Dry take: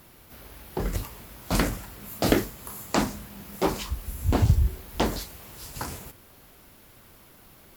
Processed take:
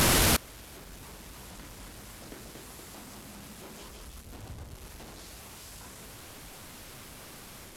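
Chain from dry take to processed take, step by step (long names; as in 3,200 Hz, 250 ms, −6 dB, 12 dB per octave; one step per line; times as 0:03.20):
linear delta modulator 64 kbit/s, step −15 dBFS
delay with pitch and tempo change per echo 362 ms, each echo +1 semitone, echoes 2
gate with flip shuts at −16 dBFS, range −27 dB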